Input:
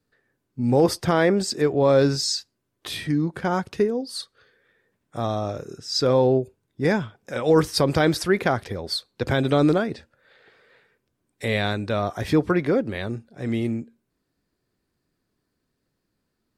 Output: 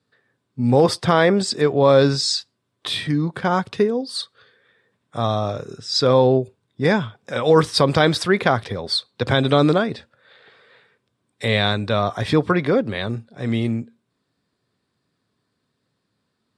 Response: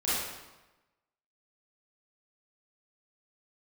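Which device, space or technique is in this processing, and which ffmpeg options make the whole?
car door speaker: -af "highpass=110,equalizer=f=110:t=q:w=4:g=5,equalizer=f=330:t=q:w=4:g=-5,equalizer=f=1100:t=q:w=4:g=4,equalizer=f=3600:t=q:w=4:g=6,equalizer=f=6400:t=q:w=4:g=-5,lowpass=f=9400:w=0.5412,lowpass=f=9400:w=1.3066,volume=1.58"

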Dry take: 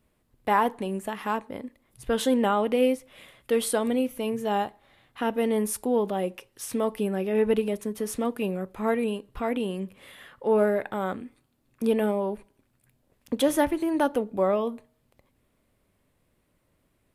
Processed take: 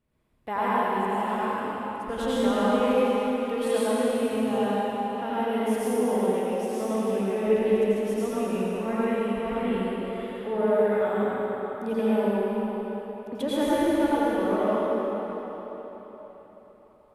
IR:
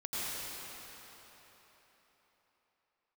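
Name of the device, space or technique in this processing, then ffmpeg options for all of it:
swimming-pool hall: -filter_complex "[1:a]atrim=start_sample=2205[s0];[0:a][s0]afir=irnorm=-1:irlink=0,highshelf=f=5600:g=-7.5,volume=0.668"

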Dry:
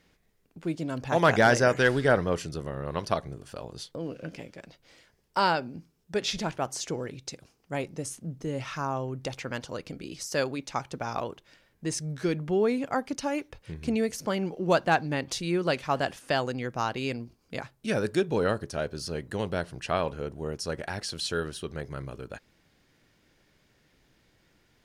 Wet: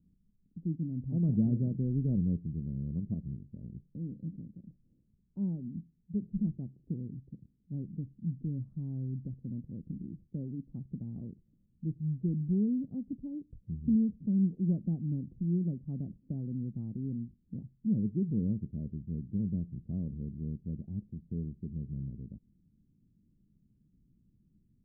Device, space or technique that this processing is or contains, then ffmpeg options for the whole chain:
the neighbour's flat through the wall: -af "lowpass=f=240:w=0.5412,lowpass=f=240:w=1.3066,equalizer=f=200:t=o:w=0.47:g=6.5"

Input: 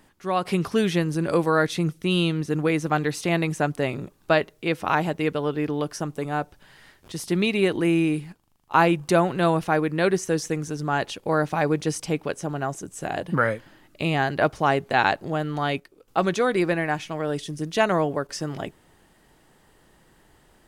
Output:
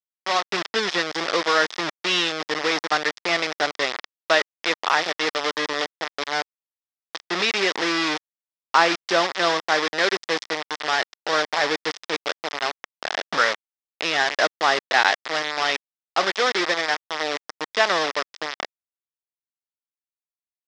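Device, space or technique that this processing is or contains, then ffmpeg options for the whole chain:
hand-held game console: -af "acrusher=bits=3:mix=0:aa=0.000001,highpass=440,equalizer=f=1200:t=q:w=4:g=3,equalizer=f=1900:t=q:w=4:g=7,equalizer=f=3500:t=q:w=4:g=6,equalizer=f=5200:t=q:w=4:g=8,lowpass=f=5800:w=0.5412,lowpass=f=5800:w=1.3066"

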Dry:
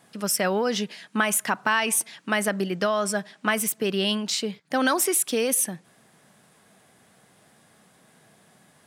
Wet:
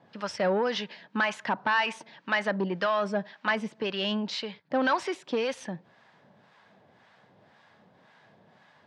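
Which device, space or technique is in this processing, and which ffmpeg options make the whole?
guitar amplifier with harmonic tremolo: -filter_complex "[0:a]acrossover=split=740[s0][s1];[s0]aeval=exprs='val(0)*(1-0.7/2+0.7/2*cos(2*PI*1.9*n/s))':c=same[s2];[s1]aeval=exprs='val(0)*(1-0.7/2-0.7/2*cos(2*PI*1.9*n/s))':c=same[s3];[s2][s3]amix=inputs=2:normalize=0,asoftclip=type=tanh:threshold=0.0841,highpass=84,equalizer=f=99:t=q:w=4:g=6,equalizer=f=560:t=q:w=4:g=5,equalizer=f=920:t=q:w=4:g=8,equalizer=f=1700:t=q:w=4:g=4,lowpass=f=4600:w=0.5412,lowpass=f=4600:w=1.3066"

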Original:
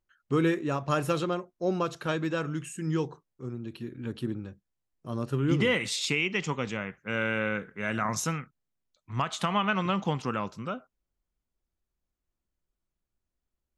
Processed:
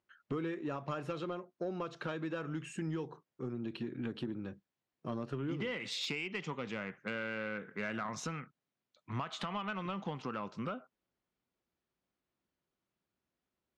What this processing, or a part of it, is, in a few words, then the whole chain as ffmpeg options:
AM radio: -af "highpass=150,lowpass=4100,acompressor=threshold=0.0126:ratio=8,asoftclip=type=tanh:threshold=0.0299,volume=1.58"

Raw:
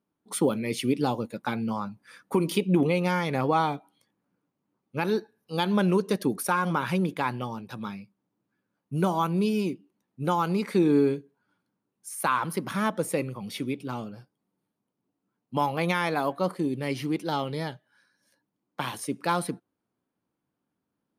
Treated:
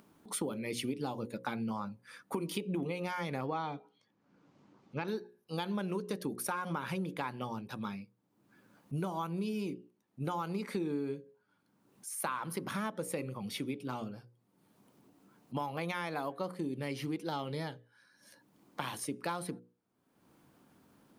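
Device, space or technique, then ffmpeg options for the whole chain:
upward and downward compression: -filter_complex "[0:a]bandreject=f=60:t=h:w=6,bandreject=f=120:t=h:w=6,bandreject=f=180:t=h:w=6,bandreject=f=240:t=h:w=6,bandreject=f=300:t=h:w=6,bandreject=f=360:t=h:w=6,bandreject=f=420:t=h:w=6,bandreject=f=480:t=h:w=6,bandreject=f=540:t=h:w=6,asettb=1/sr,asplit=3[s0][s1][s2];[s0]atrim=end=3.464[s3];[s1]atrim=start=3.46:end=5.08,asetpts=PTS-STARTPTS,afade=t=in:d=0.004:c=qsin,afade=t=out:st=1.616:d=0.004:c=qsin,lowpass=f=6400:w=0.5412,lowpass=f=6400:w=1.3066[s4];[s2]atrim=start=5.076[s5];[s3][s4]acrossfade=d=0.004:c1=hsin:c2=qsin[s6];[s6][s5]acrossfade=d=0.004:c1=qsin:c2=hsin,acompressor=mode=upward:threshold=0.00708:ratio=2.5,acompressor=threshold=0.0316:ratio=5,volume=0.708"

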